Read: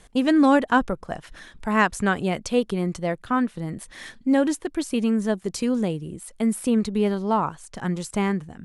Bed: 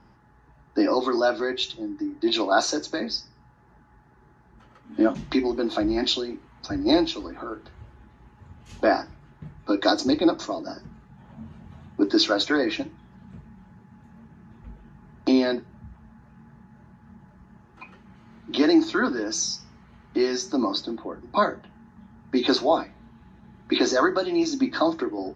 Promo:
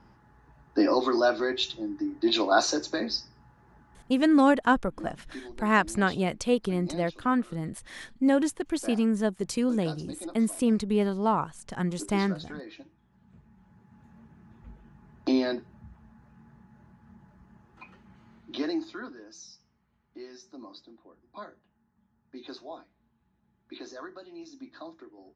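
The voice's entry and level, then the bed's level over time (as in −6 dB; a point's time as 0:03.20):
3.95 s, −3.0 dB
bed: 0:04.04 −1.5 dB
0:04.48 −19.5 dB
0:12.70 −19.5 dB
0:14.03 −5 dB
0:18.24 −5 dB
0:19.33 −21.5 dB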